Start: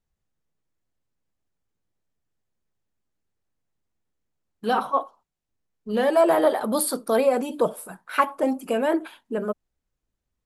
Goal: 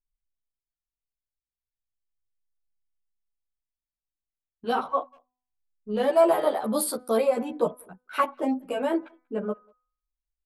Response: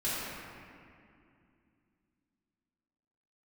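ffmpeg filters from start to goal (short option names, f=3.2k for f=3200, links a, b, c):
-filter_complex "[0:a]anlmdn=3.98,equalizer=f=1.7k:w=4.7:g=-4.5,bandreject=f=250.5:t=h:w=4,bandreject=f=501:t=h:w=4,bandreject=f=751.5:t=h:w=4,bandreject=f=1.002k:t=h:w=4,bandreject=f=1.2525k:t=h:w=4,bandreject=f=1.503k:t=h:w=4,bandreject=f=1.7535k:t=h:w=4,bandreject=f=2.004k:t=h:w=4,bandreject=f=2.2545k:t=h:w=4,asplit=2[a][b];[b]adelay=190,highpass=300,lowpass=3.4k,asoftclip=type=hard:threshold=-17dB,volume=-29dB[c];[a][c]amix=inputs=2:normalize=0,asplit=2[d][e];[e]adelay=11.6,afreqshift=0.32[f];[d][f]amix=inputs=2:normalize=1"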